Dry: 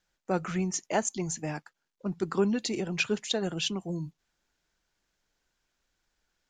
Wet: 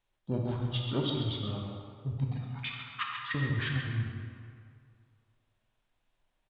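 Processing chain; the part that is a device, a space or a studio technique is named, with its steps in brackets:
0:02.27–0:03.35: inverse Chebyshev high-pass filter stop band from 450 Hz, stop band 70 dB
single-tap delay 136 ms −8 dB
monster voice (pitch shifter −7 semitones; formants moved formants −4.5 semitones; low-shelf EQ 100 Hz +8.5 dB; convolution reverb RT60 2.2 s, pre-delay 16 ms, DRR 0 dB)
level −5.5 dB

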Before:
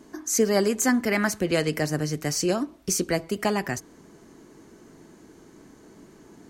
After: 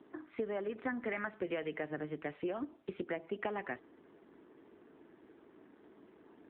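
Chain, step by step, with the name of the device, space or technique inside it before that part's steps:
voicemail (band-pass filter 300–3,100 Hz; downward compressor 10 to 1, threshold −27 dBFS, peak gain reduction 9.5 dB; level −5.5 dB; AMR narrowband 7.4 kbit/s 8,000 Hz)

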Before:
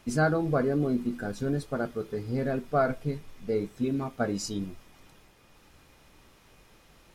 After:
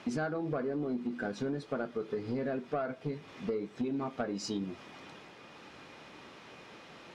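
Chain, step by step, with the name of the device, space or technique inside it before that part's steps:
AM radio (band-pass filter 190–4,200 Hz; downward compressor 10 to 1, threshold −39 dBFS, peak gain reduction 19 dB; soft clipping −33 dBFS, distortion −20 dB)
level +9 dB

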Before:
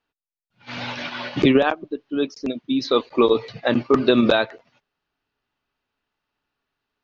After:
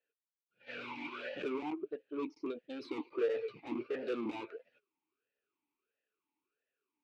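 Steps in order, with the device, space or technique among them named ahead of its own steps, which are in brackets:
talk box (tube saturation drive 27 dB, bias 0.4; formant filter swept between two vowels e-u 1.5 Hz)
level +3.5 dB

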